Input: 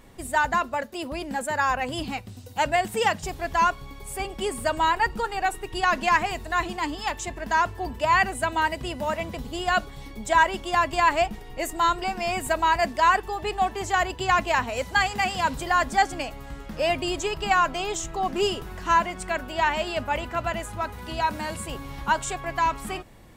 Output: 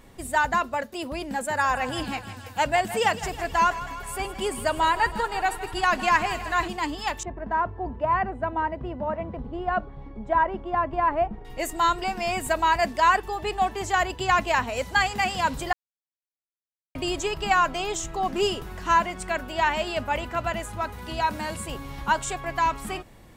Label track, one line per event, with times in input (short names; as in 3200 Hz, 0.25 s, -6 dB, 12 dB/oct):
1.280000	6.680000	thinning echo 0.16 s, feedback 74%, level -13.5 dB
7.230000	11.450000	LPF 1100 Hz
15.730000	16.950000	mute